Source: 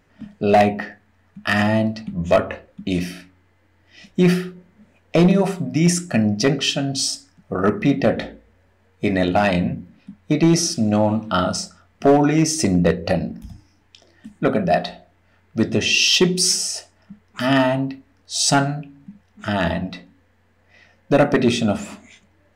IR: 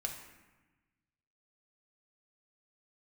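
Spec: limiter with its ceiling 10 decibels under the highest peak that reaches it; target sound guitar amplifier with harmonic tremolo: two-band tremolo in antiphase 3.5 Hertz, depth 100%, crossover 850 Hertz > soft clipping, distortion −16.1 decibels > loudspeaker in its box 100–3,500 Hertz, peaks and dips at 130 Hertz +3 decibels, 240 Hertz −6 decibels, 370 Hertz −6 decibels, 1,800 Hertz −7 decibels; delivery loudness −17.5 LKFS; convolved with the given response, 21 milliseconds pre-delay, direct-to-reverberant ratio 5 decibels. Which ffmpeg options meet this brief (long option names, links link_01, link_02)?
-filter_complex "[0:a]alimiter=limit=-18dB:level=0:latency=1,asplit=2[link_01][link_02];[1:a]atrim=start_sample=2205,adelay=21[link_03];[link_02][link_03]afir=irnorm=-1:irlink=0,volume=-5.5dB[link_04];[link_01][link_04]amix=inputs=2:normalize=0,acrossover=split=850[link_05][link_06];[link_05]aeval=exprs='val(0)*(1-1/2+1/2*cos(2*PI*3.5*n/s))':channel_layout=same[link_07];[link_06]aeval=exprs='val(0)*(1-1/2-1/2*cos(2*PI*3.5*n/s))':channel_layout=same[link_08];[link_07][link_08]amix=inputs=2:normalize=0,asoftclip=threshold=-21.5dB,highpass=100,equalizer=frequency=130:width_type=q:width=4:gain=3,equalizer=frequency=240:width_type=q:width=4:gain=-6,equalizer=frequency=370:width_type=q:width=4:gain=-6,equalizer=frequency=1800:width_type=q:width=4:gain=-7,lowpass=frequency=3500:width=0.5412,lowpass=frequency=3500:width=1.3066,volume=17.5dB"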